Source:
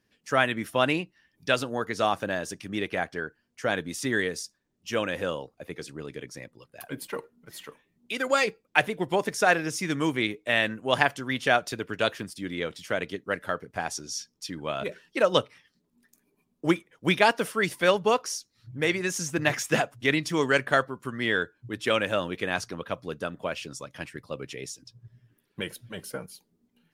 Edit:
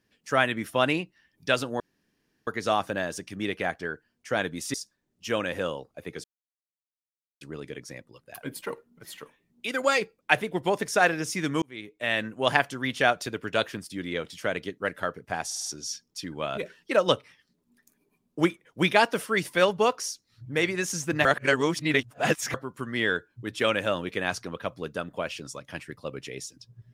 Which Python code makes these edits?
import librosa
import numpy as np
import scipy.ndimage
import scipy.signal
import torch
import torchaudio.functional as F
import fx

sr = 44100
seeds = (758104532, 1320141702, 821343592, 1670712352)

y = fx.edit(x, sr, fx.insert_room_tone(at_s=1.8, length_s=0.67),
    fx.cut(start_s=4.07, length_s=0.3),
    fx.insert_silence(at_s=5.87, length_s=1.17),
    fx.fade_in_span(start_s=10.08, length_s=0.69),
    fx.stutter(start_s=13.92, slice_s=0.05, count=5),
    fx.reverse_span(start_s=19.51, length_s=1.29), tone=tone)